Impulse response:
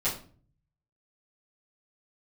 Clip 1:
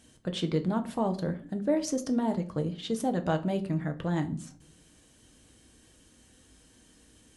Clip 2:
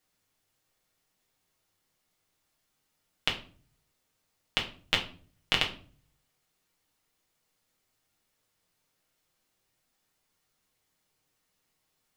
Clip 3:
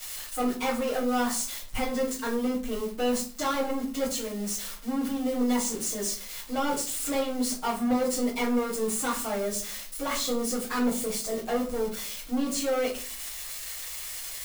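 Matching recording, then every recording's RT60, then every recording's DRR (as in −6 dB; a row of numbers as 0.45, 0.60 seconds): 3; 0.45, 0.45, 0.45 seconds; 5.5, −1.5, −11.0 decibels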